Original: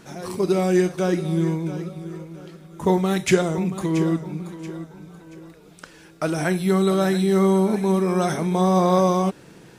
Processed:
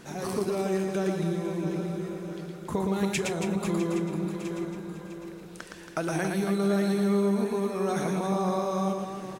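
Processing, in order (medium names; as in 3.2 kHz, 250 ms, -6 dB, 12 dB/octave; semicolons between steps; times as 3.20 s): compression, threshold -26 dBFS, peak gain reduction 14.5 dB; reverse bouncing-ball echo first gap 120 ms, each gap 1.4×, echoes 5; speed mistake 24 fps film run at 25 fps; trim -1 dB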